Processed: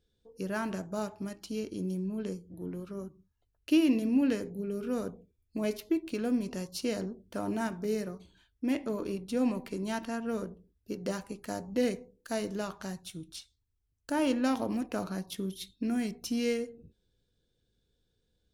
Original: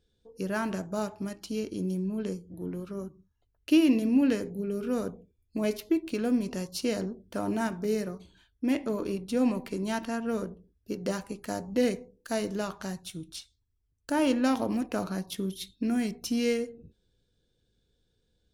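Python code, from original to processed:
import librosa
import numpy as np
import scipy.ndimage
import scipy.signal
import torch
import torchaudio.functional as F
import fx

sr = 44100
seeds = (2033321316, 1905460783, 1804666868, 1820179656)

y = F.gain(torch.from_numpy(x), -3.0).numpy()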